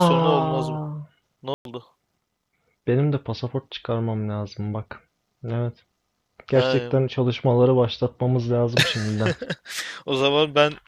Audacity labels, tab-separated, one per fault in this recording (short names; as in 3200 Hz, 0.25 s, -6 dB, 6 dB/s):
1.540000	1.650000	gap 0.112 s